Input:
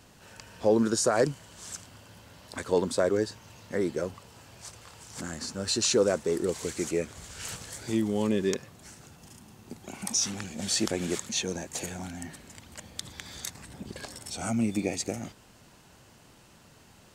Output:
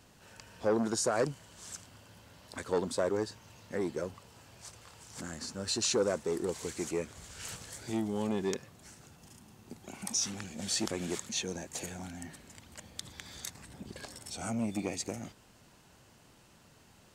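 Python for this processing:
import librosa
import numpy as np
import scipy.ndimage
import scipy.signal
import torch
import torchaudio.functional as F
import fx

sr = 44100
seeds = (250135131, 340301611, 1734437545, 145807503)

y = fx.transformer_sat(x, sr, knee_hz=610.0)
y = y * 10.0 ** (-4.5 / 20.0)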